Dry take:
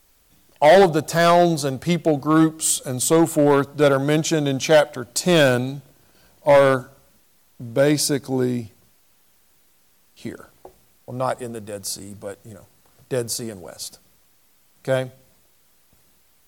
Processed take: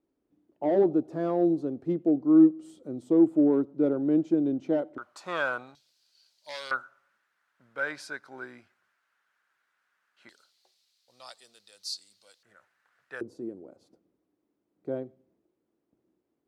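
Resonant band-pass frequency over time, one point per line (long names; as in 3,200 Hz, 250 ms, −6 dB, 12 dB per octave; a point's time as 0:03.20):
resonant band-pass, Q 3.9
310 Hz
from 0:04.98 1,200 Hz
from 0:05.75 4,500 Hz
from 0:06.71 1,500 Hz
from 0:10.29 4,300 Hz
from 0:12.43 1,600 Hz
from 0:13.21 320 Hz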